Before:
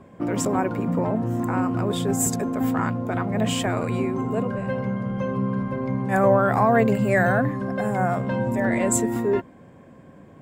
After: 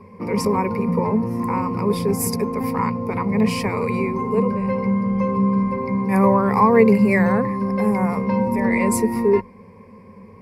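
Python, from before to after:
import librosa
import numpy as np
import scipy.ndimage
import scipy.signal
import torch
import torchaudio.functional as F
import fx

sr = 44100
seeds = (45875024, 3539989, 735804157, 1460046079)

y = fx.ripple_eq(x, sr, per_octave=0.87, db=18)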